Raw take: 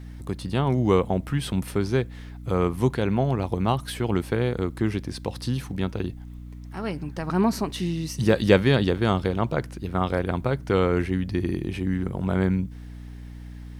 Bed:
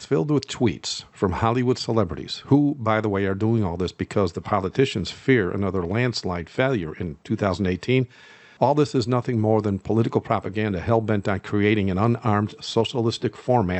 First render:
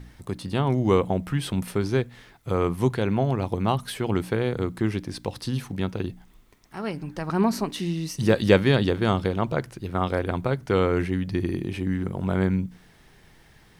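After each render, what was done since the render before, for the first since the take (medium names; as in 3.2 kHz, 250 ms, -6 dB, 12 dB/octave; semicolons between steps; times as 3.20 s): de-hum 60 Hz, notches 5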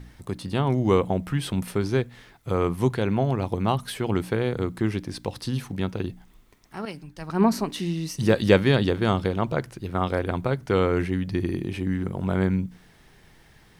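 6.85–7.53 s: three bands expanded up and down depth 100%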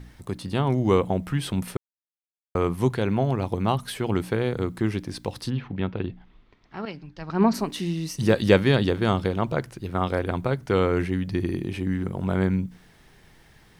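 1.77–2.55 s: mute; 5.49–7.53 s: low-pass 3 kHz -> 5.9 kHz 24 dB/octave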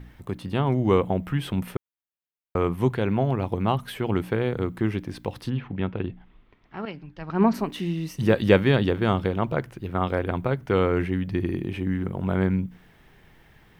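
high-order bell 6.6 kHz -8.5 dB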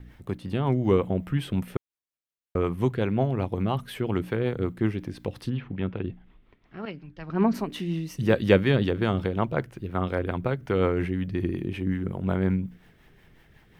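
rotary cabinet horn 5.5 Hz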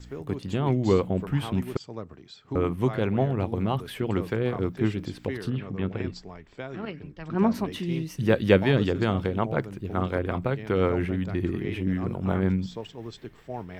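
add bed -16.5 dB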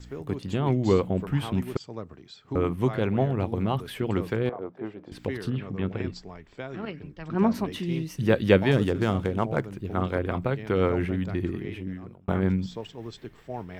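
4.49–5.12 s: band-pass filter 680 Hz, Q 1.6; 8.71–9.65 s: median filter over 9 samples; 11.30–12.28 s: fade out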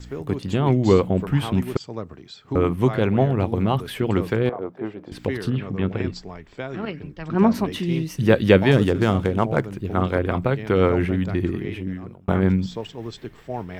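trim +5.5 dB; peak limiter -1 dBFS, peak gain reduction 2 dB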